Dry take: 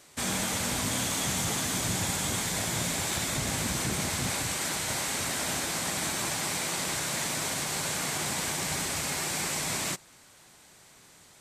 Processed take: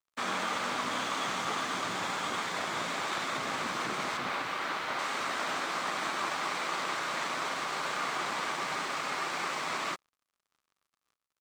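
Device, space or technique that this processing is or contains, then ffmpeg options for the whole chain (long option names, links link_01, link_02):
pocket radio on a weak battery: -filter_complex "[0:a]asettb=1/sr,asplit=3[link_01][link_02][link_03];[link_01]atrim=end=4.174[link_04];[link_02]atrim=start=4.17:end=4.99,asetpts=PTS-STARTPTS,afade=type=in:duration=0.004:curve=qsin,afade=type=out:start_time=0.816:duration=0.004:curve=qsin,acrossover=split=4700[link_05][link_06];[link_06]acompressor=threshold=-42dB:ratio=4:attack=1:release=60[link_07];[link_05][link_07]amix=inputs=2:normalize=0[link_08];[link_03]atrim=start=4.986[link_09];[link_04][link_08]acrossfade=duration=0.004:curve1=hsin:curve2=qsin[link_10];[link_10][link_09]acrossfade=duration=0.004:curve1=qsin:curve2=hsin,highpass=310,lowpass=3700,aeval=exprs='sgn(val(0))*max(abs(val(0))-0.00251,0)':channel_layout=same,equalizer=frequency=1200:width_type=o:width=0.5:gain=10"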